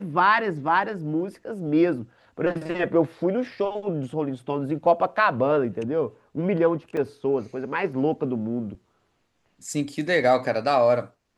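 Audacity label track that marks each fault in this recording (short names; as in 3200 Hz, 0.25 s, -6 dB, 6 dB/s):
6.970000	6.970000	gap 3.2 ms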